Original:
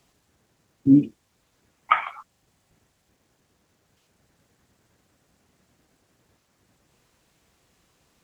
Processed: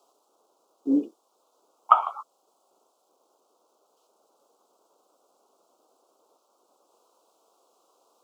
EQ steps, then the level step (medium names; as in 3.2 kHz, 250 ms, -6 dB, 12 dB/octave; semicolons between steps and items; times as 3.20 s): high-pass 400 Hz 24 dB/octave; Butterworth band-stop 1.8 kHz, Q 0.92; resonant high shelf 1.7 kHz -7 dB, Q 3; +5.0 dB